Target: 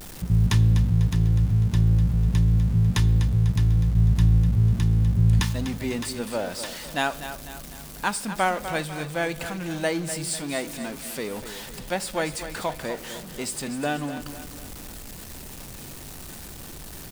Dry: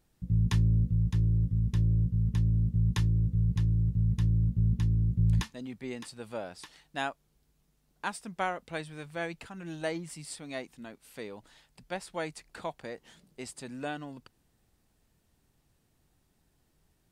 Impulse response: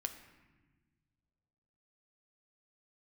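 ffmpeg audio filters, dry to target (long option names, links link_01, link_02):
-filter_complex "[0:a]aeval=exprs='val(0)+0.5*0.00708*sgn(val(0))':channel_layout=same,aecho=1:1:248|496|744|992|1240:0.282|0.13|0.0596|0.0274|0.0126,asplit=2[link_01][link_02];[1:a]atrim=start_sample=2205,asetrate=79380,aresample=44100,highshelf=frequency=4800:gain=9[link_03];[link_02][link_03]afir=irnorm=-1:irlink=0,volume=2dB[link_04];[link_01][link_04]amix=inputs=2:normalize=0,volume=3.5dB"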